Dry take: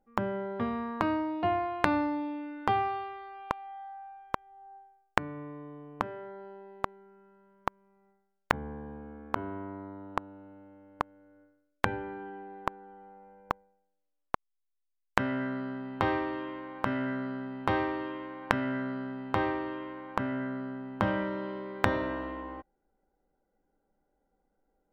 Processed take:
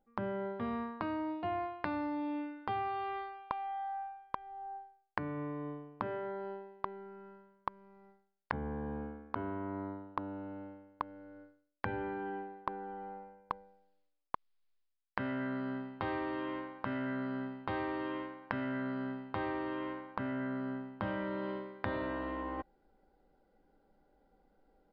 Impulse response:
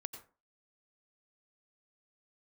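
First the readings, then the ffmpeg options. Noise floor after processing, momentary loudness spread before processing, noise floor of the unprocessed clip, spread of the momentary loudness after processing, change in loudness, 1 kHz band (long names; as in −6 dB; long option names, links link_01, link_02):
−77 dBFS, 15 LU, −79 dBFS, 8 LU, −5.5 dB, −5.5 dB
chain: -af "areverse,acompressor=threshold=-44dB:ratio=4,areverse,aresample=11025,aresample=44100,volume=7dB"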